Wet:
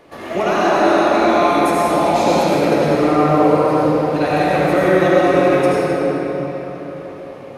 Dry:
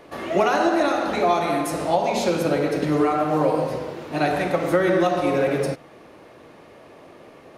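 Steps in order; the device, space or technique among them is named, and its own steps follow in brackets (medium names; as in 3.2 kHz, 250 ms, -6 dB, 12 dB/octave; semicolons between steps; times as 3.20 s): cathedral (reverberation RT60 4.6 s, pre-delay 69 ms, DRR -7 dB); trim -1 dB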